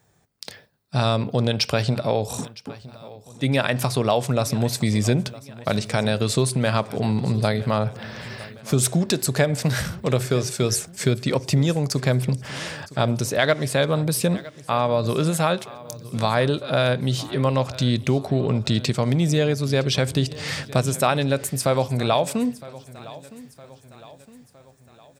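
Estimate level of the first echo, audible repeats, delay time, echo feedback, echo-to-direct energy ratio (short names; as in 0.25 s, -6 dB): -19.0 dB, 3, 0.962 s, 49%, -18.0 dB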